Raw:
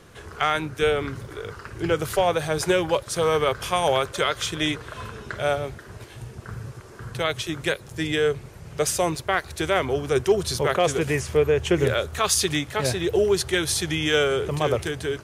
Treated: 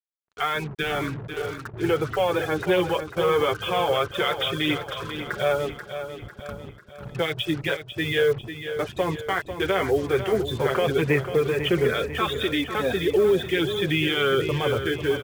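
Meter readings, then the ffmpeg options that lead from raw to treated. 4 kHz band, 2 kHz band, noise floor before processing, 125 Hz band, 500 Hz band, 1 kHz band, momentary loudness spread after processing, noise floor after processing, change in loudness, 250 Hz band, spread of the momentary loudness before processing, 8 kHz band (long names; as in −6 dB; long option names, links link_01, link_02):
−0.5 dB, +0.5 dB, −44 dBFS, −0.5 dB, 0.0 dB, −1.5 dB, 10 LU, −46 dBFS, −1.0 dB, +1.0 dB, 16 LU, −15.0 dB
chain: -filter_complex "[0:a]aresample=8000,aresample=44100,adynamicequalizer=threshold=0.0224:dfrequency=690:dqfactor=1.2:tfrequency=690:tqfactor=1.2:attack=5:release=100:ratio=0.375:range=1.5:mode=cutabove:tftype=bell,asplit=2[link_01][link_02];[link_02]asoftclip=type=tanh:threshold=-17.5dB,volume=-4dB[link_03];[link_01][link_03]amix=inputs=2:normalize=0,afftfilt=real='re*gte(hypot(re,im),0.0501)':imag='im*gte(hypot(re,im),0.0501)':win_size=1024:overlap=0.75,lowshelf=frequency=100:gain=-10,alimiter=limit=-14dB:level=0:latency=1:release=22,acontrast=52,bandreject=frequency=630:width=12,agate=range=-27dB:threshold=-32dB:ratio=16:detection=peak,flanger=delay=3.1:depth=8.4:regen=-16:speed=0.16:shape=triangular,acrusher=bits=5:mix=0:aa=0.5,aecho=1:1:496|992|1488|1984|2480:0.316|0.158|0.0791|0.0395|0.0198,volume=-2.5dB"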